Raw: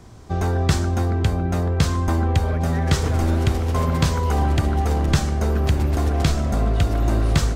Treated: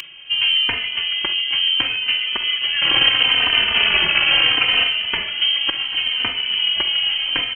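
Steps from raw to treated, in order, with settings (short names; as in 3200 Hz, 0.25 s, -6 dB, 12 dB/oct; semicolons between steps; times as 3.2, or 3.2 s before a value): 2.81–4.87 infinite clipping; tilt -3 dB/oct; in parallel at +1 dB: limiter -4.5 dBFS, peak gain reduction 8 dB; on the sum: upward compressor, threshold -20 dBFS; brick-wall FIR high-pass 400 Hz; feedback echo 0.261 s, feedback 56%, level -21 dB; on a send at -11 dB: reverb, pre-delay 40 ms; on the sum: inverted band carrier 3600 Hz; endless flanger 3.1 ms -0.72 Hz; gain +5.5 dB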